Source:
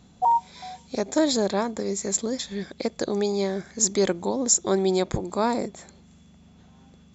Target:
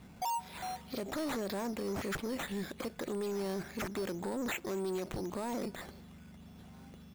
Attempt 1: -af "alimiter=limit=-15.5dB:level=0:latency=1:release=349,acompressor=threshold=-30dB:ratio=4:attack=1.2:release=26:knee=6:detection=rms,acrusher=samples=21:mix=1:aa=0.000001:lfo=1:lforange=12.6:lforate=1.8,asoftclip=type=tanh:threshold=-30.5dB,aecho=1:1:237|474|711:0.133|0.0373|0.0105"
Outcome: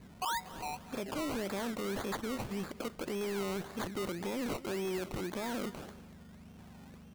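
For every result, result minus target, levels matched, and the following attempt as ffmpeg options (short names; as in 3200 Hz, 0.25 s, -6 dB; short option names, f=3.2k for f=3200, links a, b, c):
echo-to-direct +9 dB; decimation with a swept rate: distortion +6 dB
-af "alimiter=limit=-15.5dB:level=0:latency=1:release=349,acompressor=threshold=-30dB:ratio=4:attack=1.2:release=26:knee=6:detection=rms,acrusher=samples=21:mix=1:aa=0.000001:lfo=1:lforange=12.6:lforate=1.8,asoftclip=type=tanh:threshold=-30.5dB,aecho=1:1:237|474:0.0473|0.0132"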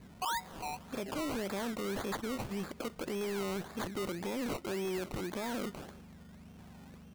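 decimation with a swept rate: distortion +6 dB
-af "alimiter=limit=-15.5dB:level=0:latency=1:release=349,acompressor=threshold=-30dB:ratio=4:attack=1.2:release=26:knee=6:detection=rms,acrusher=samples=7:mix=1:aa=0.000001:lfo=1:lforange=4.2:lforate=1.8,asoftclip=type=tanh:threshold=-30.5dB,aecho=1:1:237|474:0.0473|0.0132"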